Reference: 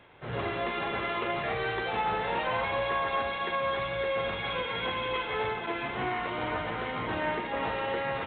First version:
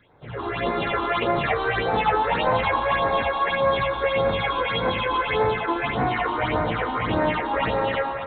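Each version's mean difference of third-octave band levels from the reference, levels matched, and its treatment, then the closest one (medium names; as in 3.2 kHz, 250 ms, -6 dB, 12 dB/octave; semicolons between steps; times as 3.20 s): 3.0 dB: band-stop 370 Hz, Q 12; level rider gain up to 11 dB; phase shifter stages 6, 1.7 Hz, lowest notch 140–3000 Hz; band-passed feedback delay 232 ms, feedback 84%, band-pass 860 Hz, level -13 dB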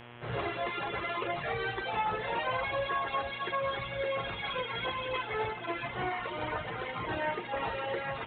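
2.0 dB: reverb removal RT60 1.5 s; peaking EQ 240 Hz -13.5 dB 0.23 oct; mains buzz 120 Hz, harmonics 28, -50 dBFS -3 dB/octave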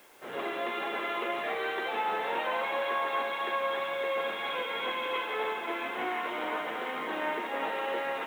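8.0 dB: high-pass 250 Hz 24 dB/octave; word length cut 10-bit, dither triangular; on a send: feedback echo behind a band-pass 340 ms, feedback 82%, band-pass 1.4 kHz, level -12 dB; on the sum: trim -1.5 dB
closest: second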